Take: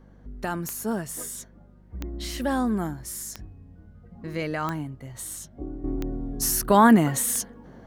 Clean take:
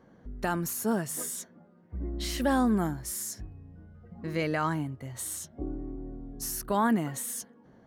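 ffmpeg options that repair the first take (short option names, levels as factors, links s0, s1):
-af "adeclick=t=4,bandreject=f=49.5:t=h:w=4,bandreject=f=99:t=h:w=4,bandreject=f=148.5:t=h:w=4,bandreject=f=198:t=h:w=4,bandreject=f=247.5:t=h:w=4,agate=range=0.0891:threshold=0.00794,asetnsamples=n=441:p=0,asendcmd='5.84 volume volume -10dB',volume=1"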